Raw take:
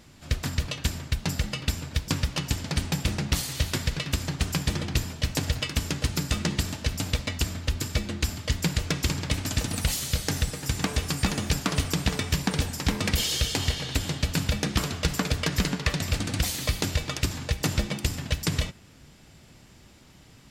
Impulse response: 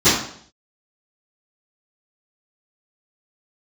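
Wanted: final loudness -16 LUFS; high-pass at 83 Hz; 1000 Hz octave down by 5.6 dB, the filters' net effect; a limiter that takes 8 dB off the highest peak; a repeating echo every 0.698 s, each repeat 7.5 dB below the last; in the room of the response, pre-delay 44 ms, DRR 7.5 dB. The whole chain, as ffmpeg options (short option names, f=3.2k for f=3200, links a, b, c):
-filter_complex "[0:a]highpass=83,equalizer=f=1k:t=o:g=-7.5,alimiter=limit=-18.5dB:level=0:latency=1,aecho=1:1:698|1396|2094|2792|3490:0.422|0.177|0.0744|0.0312|0.0131,asplit=2[a][b];[1:a]atrim=start_sample=2205,adelay=44[c];[b][c]afir=irnorm=-1:irlink=0,volume=-31dB[d];[a][d]amix=inputs=2:normalize=0,volume=13.5dB"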